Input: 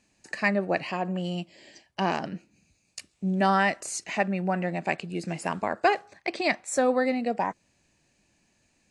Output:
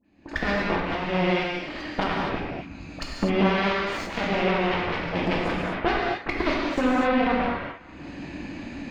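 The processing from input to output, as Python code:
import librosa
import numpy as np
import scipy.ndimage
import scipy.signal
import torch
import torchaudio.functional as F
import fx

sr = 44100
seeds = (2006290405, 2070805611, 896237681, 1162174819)

y = fx.rattle_buzz(x, sr, strikes_db=-35.0, level_db=-24.0)
y = fx.recorder_agc(y, sr, target_db=-17.0, rise_db_per_s=55.0, max_gain_db=30)
y = fx.peak_eq(y, sr, hz=290.0, db=12.5, octaves=0.36)
y = fx.notch(y, sr, hz=5700.0, q=6.2)
y = fx.dispersion(y, sr, late='highs', ms=48.0, hz=1500.0)
y = 10.0 ** (-10.0 / 20.0) * np.tanh(y / 10.0 ** (-10.0 / 20.0))
y = fx.cheby_harmonics(y, sr, harmonics=(4, 7), levels_db=(-12, -10), full_scale_db=-10.0)
y = fx.air_absorb(y, sr, metres=260.0)
y = fx.echo_wet_bandpass(y, sr, ms=181, feedback_pct=72, hz=1500.0, wet_db=-21)
y = fx.rev_gated(y, sr, seeds[0], gate_ms=280, shape='flat', drr_db=-3.5)
y = fx.sustainer(y, sr, db_per_s=27.0, at=(3.73, 5.8))
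y = y * 10.0 ** (-4.5 / 20.0)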